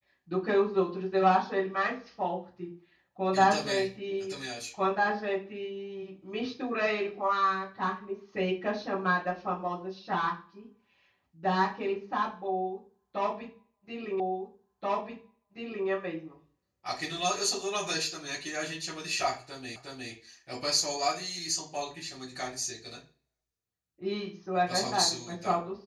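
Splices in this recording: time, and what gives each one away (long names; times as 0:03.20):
0:14.20: the same again, the last 1.68 s
0:19.76: the same again, the last 0.36 s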